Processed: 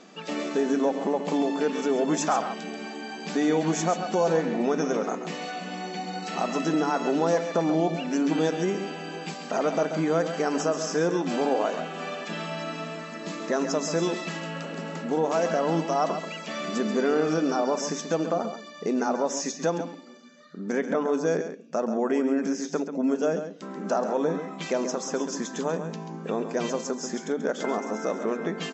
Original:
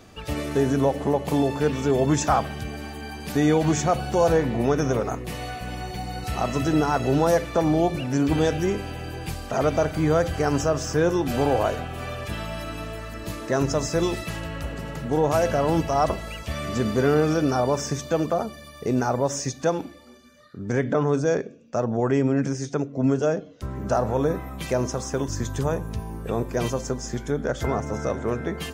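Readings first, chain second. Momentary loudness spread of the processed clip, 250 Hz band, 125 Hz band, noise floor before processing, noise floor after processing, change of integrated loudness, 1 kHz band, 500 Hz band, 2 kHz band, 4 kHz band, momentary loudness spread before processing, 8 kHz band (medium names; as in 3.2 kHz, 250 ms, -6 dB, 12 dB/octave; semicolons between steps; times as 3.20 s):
10 LU, -2.0 dB, -10.5 dB, -43 dBFS, -41 dBFS, -3.0 dB, -2.0 dB, -2.5 dB, -1.5 dB, -1.0 dB, 12 LU, -1.5 dB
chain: FFT band-pass 160–7900 Hz; compression 1.5:1, threshold -26 dBFS, peak gain reduction 4 dB; delay 135 ms -9.5 dB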